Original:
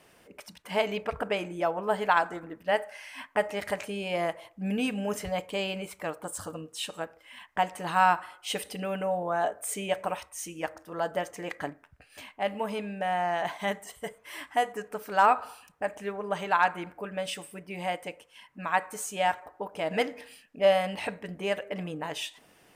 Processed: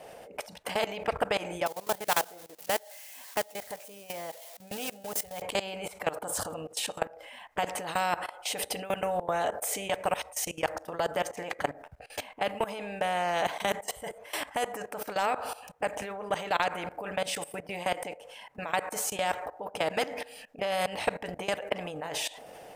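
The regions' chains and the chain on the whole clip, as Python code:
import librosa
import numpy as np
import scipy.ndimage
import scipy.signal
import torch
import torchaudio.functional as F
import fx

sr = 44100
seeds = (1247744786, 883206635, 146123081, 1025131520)

y = fx.chain(x, sr, fx.crossing_spikes(level_db=-22.5),
    fx.upward_expand(threshold_db=-35.0, expansion=2.5), at=(1.66, 5.42))
y = fx.band_shelf(y, sr, hz=620.0, db=12.5, octaves=1.1)
y = fx.level_steps(y, sr, step_db=20)
y = fx.spectral_comp(y, sr, ratio=2.0)
y = y * 10.0 ** (-1.5 / 20.0)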